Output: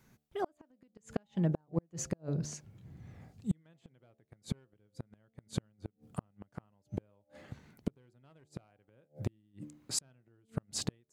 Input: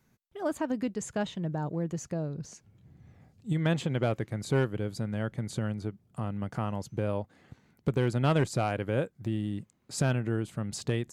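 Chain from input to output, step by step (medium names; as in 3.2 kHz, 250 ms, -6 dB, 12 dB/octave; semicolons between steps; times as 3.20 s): de-hum 74.56 Hz, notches 11; inverted gate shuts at -24 dBFS, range -40 dB; trim +4 dB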